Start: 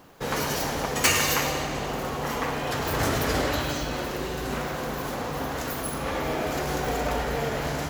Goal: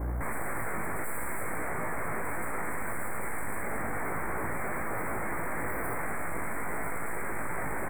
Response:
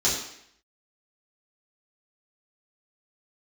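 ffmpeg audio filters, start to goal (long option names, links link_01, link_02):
-filter_complex "[0:a]acrossover=split=2700[link_01][link_02];[link_02]acompressor=threshold=-45dB:ratio=4:attack=1:release=60[link_03];[link_01][link_03]amix=inputs=2:normalize=0,asettb=1/sr,asplit=3[link_04][link_05][link_06];[link_04]atrim=end=4.044[link_07];[link_05]atrim=start=4.04:end=5.2,asetpts=PTS-STARTPTS,afade=type=in:duration=0.004:curve=qsin,afade=type=out:start_time=1.156:duration=0.004:curve=qsin,highpass=120[link_08];[link_06]atrim=start=5.196[link_09];[link_07][link_08]acrossfade=duration=0.004:curve1=hsin:curve2=qsin[link_10];[link_10][link_09]acrossfade=duration=0.004:curve1=qsin:curve2=hsin,acrossover=split=180|1200|3700[link_11][link_12][link_13][link_14];[link_12]acontrast=78[link_15];[link_11][link_15][link_13][link_14]amix=inputs=4:normalize=0,aeval=exprs='val(0)+0.0158*(sin(2*PI*60*n/s)+sin(2*PI*2*60*n/s)/2+sin(2*PI*3*60*n/s)/3+sin(2*PI*4*60*n/s)/4+sin(2*PI*5*60*n/s)/5)':channel_layout=same,aeval=exprs='(tanh(28.2*val(0)+0.45)-tanh(0.45))/28.2':channel_layout=same,aeval=exprs='0.0158*(abs(mod(val(0)/0.0158+3,4)-2)-1)':channel_layout=same,asuperstop=centerf=4300:order=20:qfactor=0.78,asplit=2[link_16][link_17];[link_17]adelay=18,volume=-5dB[link_18];[link_16][link_18]amix=inputs=2:normalize=0,volume=6.5dB"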